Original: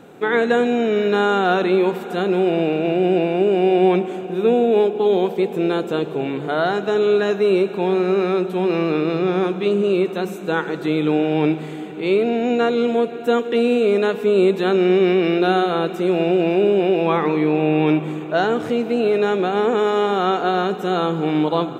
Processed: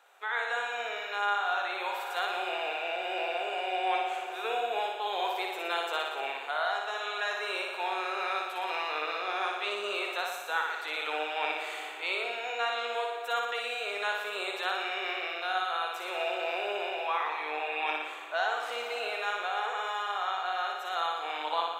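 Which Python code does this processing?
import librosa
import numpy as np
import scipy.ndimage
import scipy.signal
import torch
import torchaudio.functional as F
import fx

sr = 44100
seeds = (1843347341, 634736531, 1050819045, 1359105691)

p1 = scipy.signal.sosfilt(scipy.signal.butter(4, 780.0, 'highpass', fs=sr, output='sos'), x)
p2 = fx.rider(p1, sr, range_db=10, speed_s=0.5)
p3 = p2 + fx.room_flutter(p2, sr, wall_m=10.1, rt60_s=0.97, dry=0)
y = F.gain(torch.from_numpy(p3), -6.5).numpy()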